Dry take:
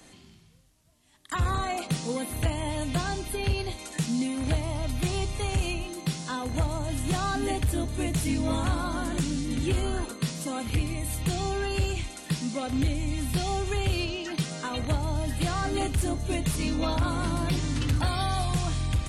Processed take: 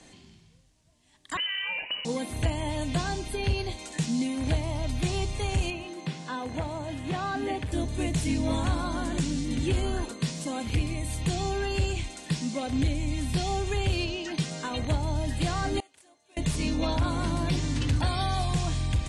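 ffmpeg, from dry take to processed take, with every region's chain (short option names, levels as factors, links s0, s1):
-filter_complex "[0:a]asettb=1/sr,asplit=3[s0][s1][s2];[s0]atrim=end=1.374[s3];[s1]atrim=start=1.37:end=2.05,asetpts=PTS-STARTPTS,afade=t=in:d=0.004:c=qsin,afade=t=out:st=0.676:d=0.004:c=qsin,lowpass=f=2600:t=q:w=0.5098,lowpass=f=2600:t=q:w=0.6013,lowpass=f=2600:t=q:w=0.9,lowpass=f=2600:t=q:w=2.563,afreqshift=-3100,acompressor=threshold=0.0447:ratio=6:attack=3.2:release=140:knee=1:detection=peak[s4];[s2]atrim=start=2.046[s5];[s3][s4]acrossfade=d=0.004:c1=hsin:c2=qsin[s6];[s6][s5]acrossfade=d=0.004:c1=qsin:c2=hsin,asettb=1/sr,asplit=3[s7][s8][s9];[s7]atrim=end=5.704[s10];[s8]atrim=start=5.7:end=7.72,asetpts=PTS-STARTPTS,afade=t=in:d=0.004:c=qsin,afade=t=out:st=2.016:d=0.004:c=qsin,acrossover=split=3400[s11][s12];[s12]acompressor=threshold=0.00251:ratio=4:attack=1:release=60[s13];[s11][s13]amix=inputs=2:normalize=0,highpass=75,lowshelf=f=170:g=-7.5[s14];[s9]atrim=start=7.716[s15];[s10][s14]acrossfade=d=0.004:c1=hsin:c2=qsin[s16];[s16][s15]acrossfade=d=0.004:c1=qsin:c2=hsin,asettb=1/sr,asplit=3[s17][s18][s19];[s17]atrim=end=15.804[s20];[s18]atrim=start=15.8:end=16.37,asetpts=PTS-STARTPTS,afade=t=in:d=0.004:c=qsin,afade=t=out:st=0.566:d=0.004:c=qsin,agate=range=0.0794:threshold=0.0891:ratio=16:release=100:detection=peak,highpass=630[s21];[s19]atrim=start=16.366[s22];[s20][s21]acrossfade=d=0.004:c1=hsin:c2=qsin[s23];[s23][s22]acrossfade=d=0.004:c1=qsin:c2=hsin,lowpass=f=9100:w=0.5412,lowpass=f=9100:w=1.3066,equalizer=f=1300:w=6.7:g=-6.5"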